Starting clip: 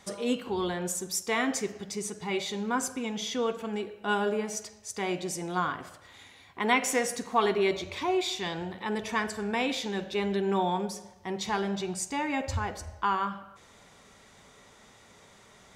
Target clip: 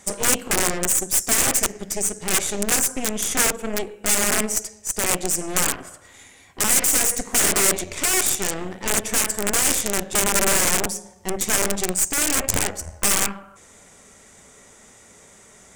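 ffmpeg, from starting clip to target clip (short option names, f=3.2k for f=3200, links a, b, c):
-af "aeval=exprs='0.316*(cos(1*acos(clip(val(0)/0.316,-1,1)))-cos(1*PI/2))+0.0158*(cos(2*acos(clip(val(0)/0.316,-1,1)))-cos(2*PI/2))+0.1*(cos(8*acos(clip(val(0)/0.316,-1,1)))-cos(8*PI/2))':c=same,aeval=exprs='(mod(7.5*val(0)+1,2)-1)/7.5':c=same,equalizer=f=125:t=o:w=1:g=-4,equalizer=f=1k:t=o:w=1:g=-5,equalizer=f=4k:t=o:w=1:g=-9,equalizer=f=8k:t=o:w=1:g=11,volume=6.5dB"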